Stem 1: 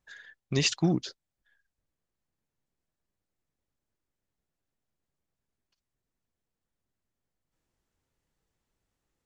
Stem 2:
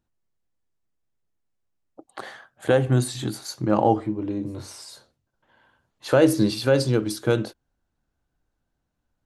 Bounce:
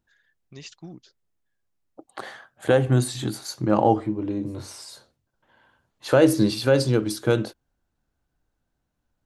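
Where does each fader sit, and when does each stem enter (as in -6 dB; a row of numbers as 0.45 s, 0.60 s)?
-16.0 dB, +0.5 dB; 0.00 s, 0.00 s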